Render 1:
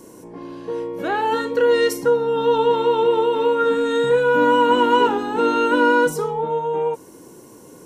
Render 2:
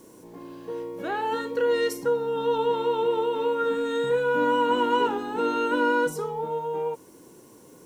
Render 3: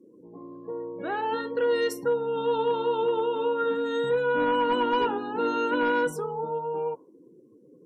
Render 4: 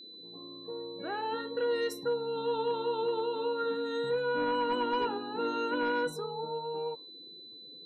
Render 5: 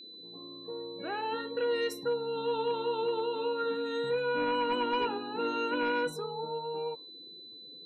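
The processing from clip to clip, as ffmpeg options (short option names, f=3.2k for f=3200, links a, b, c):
-af "acrusher=bits=8:mix=0:aa=0.000001,volume=-7dB"
-af "asoftclip=type=hard:threshold=-17.5dB,afftdn=nr=31:nf=-44,volume=-1dB"
-af "aeval=exprs='val(0)+0.00891*sin(2*PI*4000*n/s)':c=same,volume=-6dB"
-af "equalizer=f=2.5k:w=4.7:g=10"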